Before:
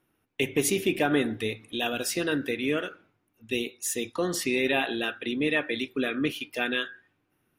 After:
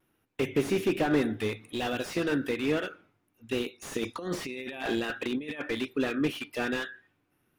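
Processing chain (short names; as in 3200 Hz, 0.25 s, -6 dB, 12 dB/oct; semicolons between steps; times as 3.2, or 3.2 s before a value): 3.88–5.62 negative-ratio compressor -31 dBFS, ratio -0.5; vibrato 1.2 Hz 41 cents; slew limiter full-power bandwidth 51 Hz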